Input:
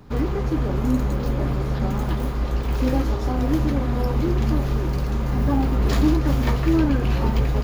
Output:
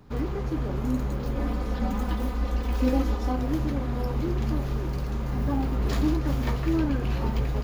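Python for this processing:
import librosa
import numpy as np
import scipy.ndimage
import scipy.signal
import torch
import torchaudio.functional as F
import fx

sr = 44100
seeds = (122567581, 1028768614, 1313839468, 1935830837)

y = fx.comb(x, sr, ms=4.0, depth=0.81, at=(1.35, 3.36))
y = y * librosa.db_to_amplitude(-6.0)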